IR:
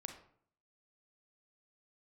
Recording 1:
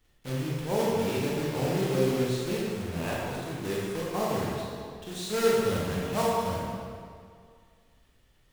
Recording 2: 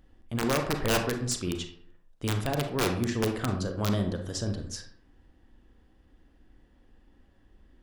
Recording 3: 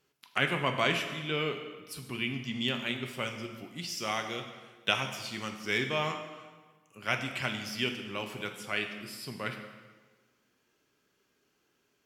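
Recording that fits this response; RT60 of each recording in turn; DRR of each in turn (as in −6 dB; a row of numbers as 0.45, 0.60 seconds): 2; 2.2, 0.60, 1.4 seconds; −6.5, 4.5, 5.0 decibels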